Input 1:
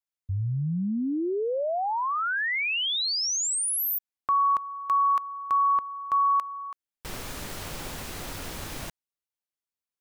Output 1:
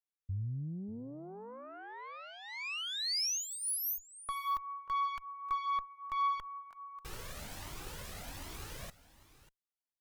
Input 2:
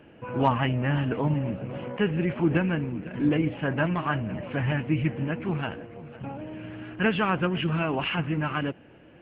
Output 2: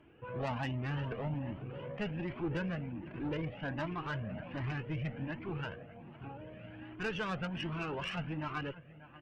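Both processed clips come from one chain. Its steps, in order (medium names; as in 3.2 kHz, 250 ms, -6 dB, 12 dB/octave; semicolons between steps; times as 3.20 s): on a send: delay 589 ms -17.5 dB; on the sum: valve stage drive 22 dB, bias 0.35; Shepard-style flanger rising 1.3 Hz; trim -3.5 dB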